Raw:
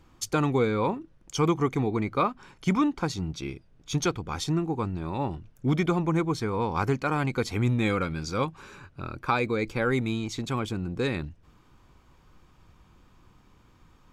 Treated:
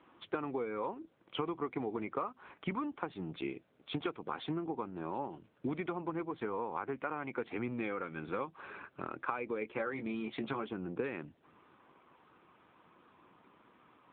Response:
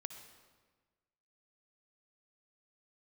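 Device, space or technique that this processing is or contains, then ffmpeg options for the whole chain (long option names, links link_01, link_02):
voicemail: -filter_complex "[0:a]asettb=1/sr,asplit=3[link_01][link_02][link_03];[link_01]atrim=end=9.604[link_04];[link_02]atrim=start=9.6:end=10.69,asetpts=PTS-STARTPTS,afade=type=in:duration=0.004:curve=qsin,afade=type=out:start_time=1.086:duration=0.004:curve=qsin,asplit=2[link_05][link_06];[link_06]adelay=14,volume=-4.5dB[link_07];[link_05][link_07]amix=inputs=2:normalize=0,atrim=end_sample=48069[link_08];[link_03]atrim=start=10.686[link_09];[link_04][link_08]acrossfade=duration=0.004:curve1=hsin:curve2=qsin[link_10];[link_10][link_09]acrossfade=duration=0.004:curve1=qsin:curve2=hsin,highpass=310,lowpass=2800,acompressor=threshold=-35dB:ratio=10,volume=2.5dB" -ar 8000 -c:a libopencore_amrnb -b:a 7950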